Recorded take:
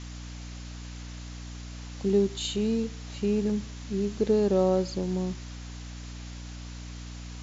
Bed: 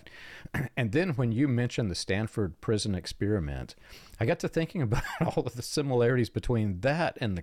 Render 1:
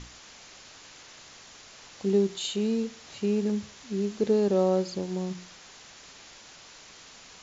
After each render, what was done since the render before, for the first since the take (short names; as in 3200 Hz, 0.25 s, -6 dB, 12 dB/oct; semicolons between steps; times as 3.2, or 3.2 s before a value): notches 60/120/180/240/300/360 Hz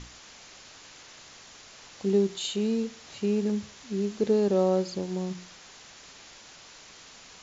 nothing audible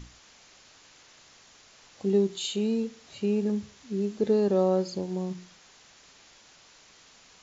noise print and reduce 6 dB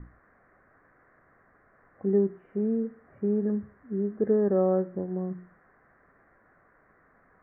steep low-pass 1900 Hz 72 dB/oct; notch 890 Hz, Q 5.8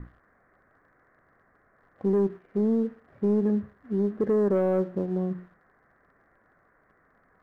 sample leveller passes 1; limiter -17 dBFS, peak gain reduction 3.5 dB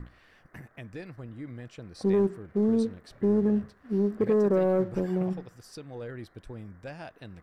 add bed -14.5 dB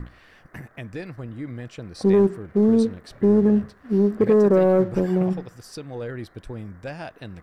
gain +7 dB